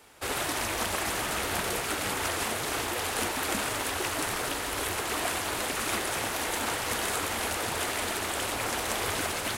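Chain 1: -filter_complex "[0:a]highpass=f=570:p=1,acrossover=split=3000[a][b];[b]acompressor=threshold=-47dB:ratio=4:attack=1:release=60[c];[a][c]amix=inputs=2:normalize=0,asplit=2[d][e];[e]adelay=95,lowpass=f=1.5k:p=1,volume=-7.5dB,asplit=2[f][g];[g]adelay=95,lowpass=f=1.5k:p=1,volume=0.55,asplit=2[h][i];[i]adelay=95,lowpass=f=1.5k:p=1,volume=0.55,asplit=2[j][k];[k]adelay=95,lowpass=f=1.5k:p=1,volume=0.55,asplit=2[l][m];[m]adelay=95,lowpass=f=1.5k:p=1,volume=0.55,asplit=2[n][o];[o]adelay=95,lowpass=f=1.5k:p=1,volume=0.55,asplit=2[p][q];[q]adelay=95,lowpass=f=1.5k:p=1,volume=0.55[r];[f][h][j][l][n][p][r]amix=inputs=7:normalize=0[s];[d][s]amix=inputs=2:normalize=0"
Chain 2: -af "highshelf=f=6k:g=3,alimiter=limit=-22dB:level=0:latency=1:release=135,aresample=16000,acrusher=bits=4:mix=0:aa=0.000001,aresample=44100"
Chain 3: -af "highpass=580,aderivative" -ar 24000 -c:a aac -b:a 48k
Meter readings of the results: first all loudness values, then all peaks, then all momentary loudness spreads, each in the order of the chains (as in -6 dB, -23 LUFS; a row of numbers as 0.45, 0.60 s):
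-33.0, -32.5, -34.0 LUFS; -19.5, -19.0, -15.0 dBFS; 1, 2, 1 LU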